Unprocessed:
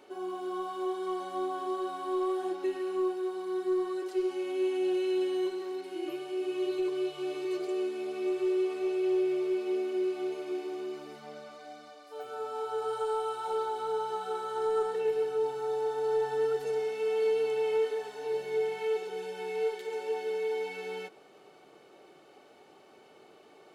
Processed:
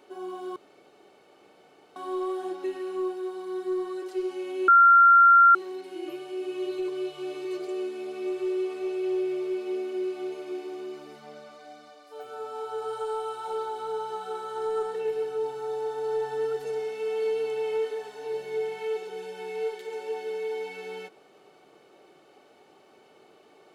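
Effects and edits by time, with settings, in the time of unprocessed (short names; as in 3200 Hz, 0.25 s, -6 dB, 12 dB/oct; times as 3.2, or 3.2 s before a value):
0.56–1.96 room tone
4.68–5.55 bleep 1380 Hz -12 dBFS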